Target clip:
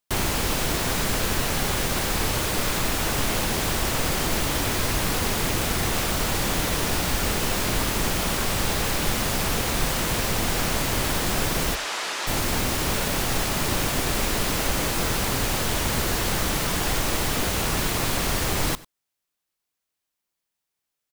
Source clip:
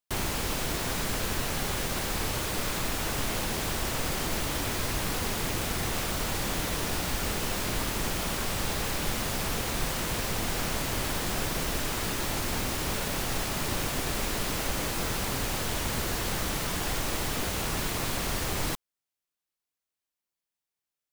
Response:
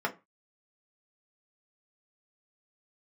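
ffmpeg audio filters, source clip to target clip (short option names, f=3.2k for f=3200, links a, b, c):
-filter_complex "[0:a]asplit=3[a][b][c];[a]afade=t=out:st=11.74:d=0.02[d];[b]highpass=660,lowpass=6.8k,afade=t=in:st=11.74:d=0.02,afade=t=out:st=12.26:d=0.02[e];[c]afade=t=in:st=12.26:d=0.02[f];[d][e][f]amix=inputs=3:normalize=0,asplit=2[g][h];[h]aecho=0:1:96:0.0944[i];[g][i]amix=inputs=2:normalize=0,volume=6dB"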